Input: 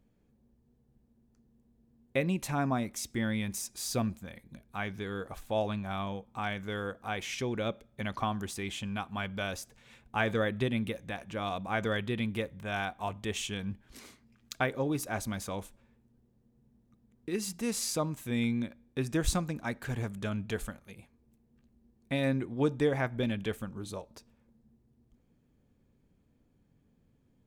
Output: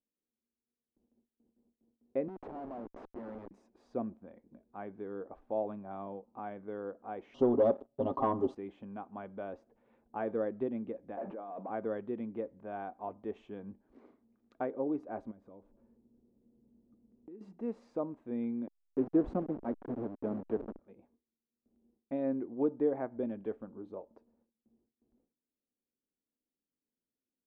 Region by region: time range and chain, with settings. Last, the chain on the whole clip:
0:02.28–0:03.51: high-pass filter 390 Hz + comparator with hysteresis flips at −38.5 dBFS
0:07.34–0:08.55: linear-phase brick-wall band-stop 1,300–2,700 Hz + comb filter 7.4 ms, depth 91% + leveller curve on the samples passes 3
0:11.17–0:11.70: compressor whose output falls as the input rises −47 dBFS + high-pass filter 100 Hz + mid-hump overdrive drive 28 dB, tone 1,100 Hz, clips at −25 dBFS
0:15.31–0:17.41: low-shelf EQ 370 Hz +9.5 dB + notch filter 770 Hz, Q 16 + downward compressor 5 to 1, threshold −46 dBFS
0:18.67–0:20.79: hold until the input has moved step −33.5 dBFS + parametric band 220 Hz +7 dB 2.6 octaves
whole clip: Chebyshev low-pass filter 710 Hz, order 2; noise gate with hold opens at −58 dBFS; low shelf with overshoot 190 Hz −12 dB, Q 1.5; level −3.5 dB

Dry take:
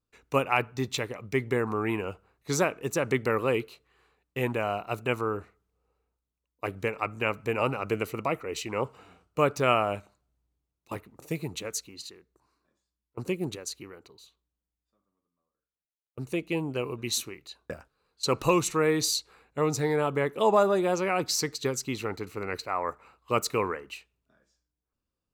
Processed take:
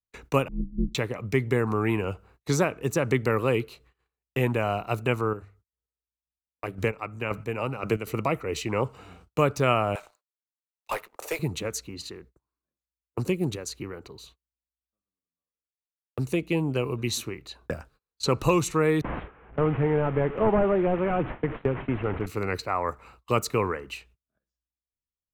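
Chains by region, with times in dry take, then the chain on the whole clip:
0:00.48–0:00.95: inverse Chebyshev low-pass filter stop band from 590 Hz, stop band 50 dB + spectral tilt −2 dB per octave + ring modulation 86 Hz
0:05.20–0:08.07: mains-hum notches 50/100 Hz + square-wave tremolo 1.9 Hz, depth 60%, duty 25%
0:09.95–0:11.39: high-pass filter 520 Hz 24 dB per octave + leveller curve on the samples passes 2
0:19.01–0:22.26: linear delta modulator 16 kbit/s, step −32 dBFS + low-pass filter 1,600 Hz + noise gate with hold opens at −28 dBFS, closes at −31 dBFS
whole clip: low-shelf EQ 140 Hz +10 dB; noise gate −59 dBFS, range −33 dB; multiband upward and downward compressor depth 40%; level +1.5 dB

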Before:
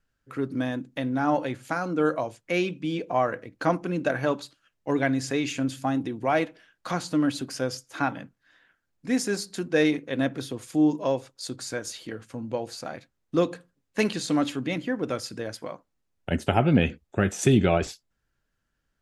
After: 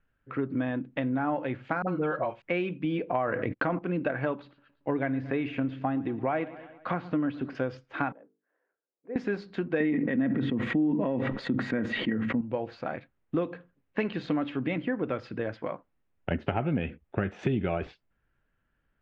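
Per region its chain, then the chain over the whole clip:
0:01.82–0:02.42: parametric band 280 Hz −8 dB 0.23 octaves + comb filter 5.4 ms, depth 35% + all-pass dispersion highs, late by 57 ms, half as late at 580 Hz
0:03.15–0:03.79: noise gate −49 dBFS, range −49 dB + envelope flattener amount 70%
0:04.35–0:07.55: de-essing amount 90% + high-shelf EQ 5,100 Hz −9.5 dB + repeating echo 114 ms, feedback 55%, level −21 dB
0:08.12–0:09.16: four-pole ladder band-pass 500 Hz, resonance 55% + mains-hum notches 50/100/150/200/250/300/350/400/450 Hz
0:09.80–0:12.41: parametric band 5,200 Hz −11 dB 0.73 octaves + hollow resonant body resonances 220/1,900 Hz, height 16 dB + level that may fall only so fast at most 29 dB per second
whole clip: low-pass filter 2,800 Hz 24 dB per octave; downward compressor 5 to 1, threshold −28 dBFS; level +2.5 dB

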